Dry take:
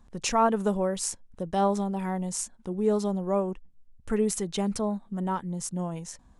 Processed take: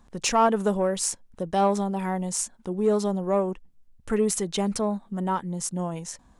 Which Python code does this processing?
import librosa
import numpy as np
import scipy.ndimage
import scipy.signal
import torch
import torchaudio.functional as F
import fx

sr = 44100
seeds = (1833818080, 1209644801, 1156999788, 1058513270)

p1 = fx.low_shelf(x, sr, hz=170.0, db=-6.0)
p2 = 10.0 ** (-21.5 / 20.0) * np.tanh(p1 / 10.0 ** (-21.5 / 20.0))
y = p1 + (p2 * librosa.db_to_amplitude(-3.5))